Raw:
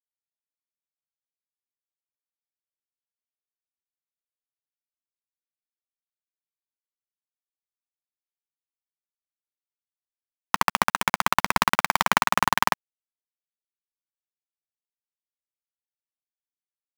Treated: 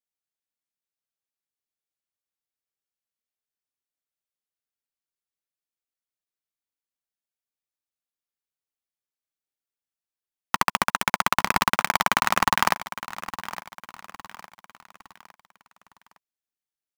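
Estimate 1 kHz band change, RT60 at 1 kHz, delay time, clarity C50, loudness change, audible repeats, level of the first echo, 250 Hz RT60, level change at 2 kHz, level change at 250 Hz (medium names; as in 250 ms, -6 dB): -1.0 dB, no reverb, 860 ms, no reverb, -1.5 dB, 3, -14.0 dB, no reverb, 0.0 dB, +0.5 dB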